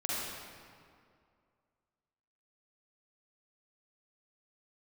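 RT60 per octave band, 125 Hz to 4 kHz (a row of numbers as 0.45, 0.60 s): 2.3, 2.4, 2.3, 2.2, 1.8, 1.4 s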